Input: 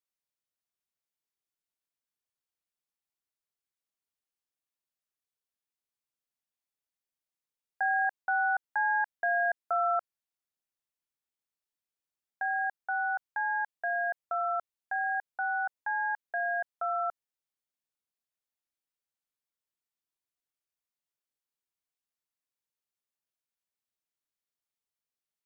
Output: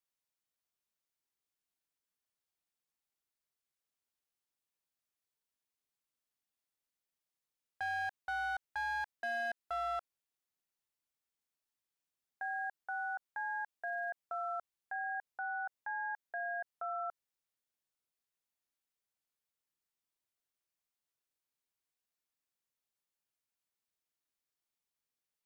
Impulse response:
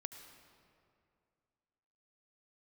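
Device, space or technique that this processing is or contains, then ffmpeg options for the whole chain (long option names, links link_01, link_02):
clipper into limiter: -af "asoftclip=type=hard:threshold=-24.5dB,alimiter=level_in=8.5dB:limit=-24dB:level=0:latency=1,volume=-8.5dB"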